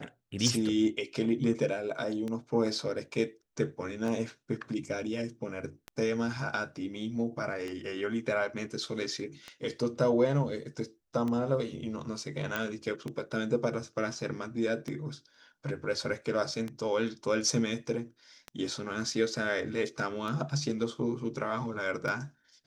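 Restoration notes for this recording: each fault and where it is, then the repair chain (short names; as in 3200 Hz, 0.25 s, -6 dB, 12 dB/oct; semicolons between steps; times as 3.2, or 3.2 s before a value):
tick 33 1/3 rpm
12.56 pop -17 dBFS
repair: de-click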